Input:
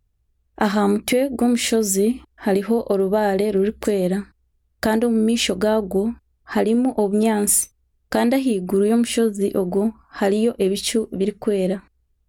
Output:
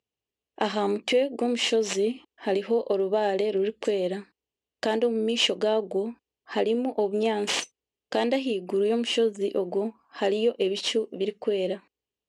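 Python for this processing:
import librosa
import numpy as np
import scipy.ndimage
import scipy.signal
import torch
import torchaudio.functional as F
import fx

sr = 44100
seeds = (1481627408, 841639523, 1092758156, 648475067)

y = fx.tracing_dist(x, sr, depth_ms=0.15)
y = fx.cabinet(y, sr, low_hz=300.0, low_slope=12, high_hz=7600.0, hz=(480.0, 1400.0, 2900.0), db=(4, -8, 9))
y = y * 10.0 ** (-5.5 / 20.0)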